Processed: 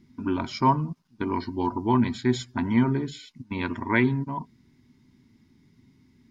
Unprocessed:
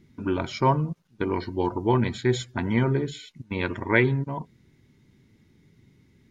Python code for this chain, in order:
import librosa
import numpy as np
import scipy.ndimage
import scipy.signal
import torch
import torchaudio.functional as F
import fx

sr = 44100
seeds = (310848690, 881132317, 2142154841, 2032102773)

y = fx.graphic_eq_31(x, sr, hz=(250, 500, 1000, 5000), db=(10, -10, 7, 7))
y = y * librosa.db_to_amplitude(-3.0)